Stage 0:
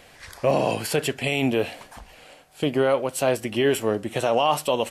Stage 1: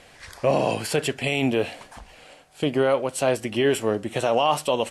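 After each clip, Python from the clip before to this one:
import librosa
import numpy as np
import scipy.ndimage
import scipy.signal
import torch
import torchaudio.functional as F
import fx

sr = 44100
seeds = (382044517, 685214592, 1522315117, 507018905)

y = scipy.signal.sosfilt(scipy.signal.butter(4, 11000.0, 'lowpass', fs=sr, output='sos'), x)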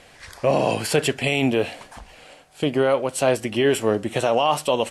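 y = fx.rider(x, sr, range_db=10, speed_s=0.5)
y = F.gain(torch.from_numpy(y), 2.5).numpy()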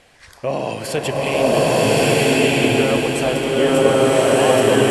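y = fx.echo_swell(x, sr, ms=103, loudest=5, wet_db=-15.5)
y = fx.rev_bloom(y, sr, seeds[0], attack_ms=1290, drr_db=-9.0)
y = F.gain(torch.from_numpy(y), -3.0).numpy()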